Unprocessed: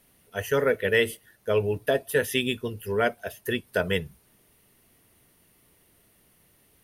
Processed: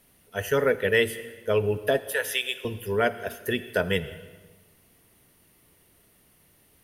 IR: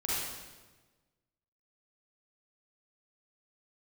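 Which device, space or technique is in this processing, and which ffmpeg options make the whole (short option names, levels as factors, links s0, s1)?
ducked reverb: -filter_complex "[0:a]asettb=1/sr,asplit=3[s0][s1][s2];[s0]atrim=end=2.004[s3];[s1]atrim=start=2:end=2.65,asetpts=PTS-STARTPTS,afade=t=in:d=0.004:c=qsin,afade=t=out:st=0.646:d=0.004:c=qsin,highpass=f=560:w=0.5412,highpass=f=560:w=1.3066[s4];[s2]atrim=start=2.646[s5];[s3][s4]acrossfade=d=0.004:c1=hsin:c2=qsin[s6];[s6][s5]acrossfade=d=0.004:c1=qsin:c2=hsin,asplit=3[s7][s8][s9];[1:a]atrim=start_sample=2205[s10];[s8][s10]afir=irnorm=-1:irlink=0[s11];[s9]apad=whole_len=301469[s12];[s11][s12]sidechaincompress=threshold=0.0501:ratio=8:attack=16:release=212,volume=0.141[s13];[s7][s13]amix=inputs=2:normalize=0"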